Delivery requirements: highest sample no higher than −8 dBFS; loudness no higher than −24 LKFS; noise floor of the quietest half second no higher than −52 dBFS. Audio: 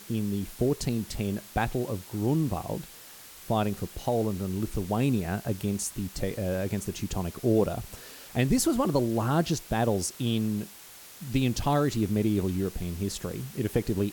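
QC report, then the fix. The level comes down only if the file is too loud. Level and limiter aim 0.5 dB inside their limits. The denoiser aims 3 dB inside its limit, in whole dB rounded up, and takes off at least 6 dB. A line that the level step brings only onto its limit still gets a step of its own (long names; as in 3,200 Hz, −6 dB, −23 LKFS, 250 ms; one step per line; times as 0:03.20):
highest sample −12.0 dBFS: in spec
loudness −29.0 LKFS: in spec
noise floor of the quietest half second −48 dBFS: out of spec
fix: broadband denoise 7 dB, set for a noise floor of −48 dBFS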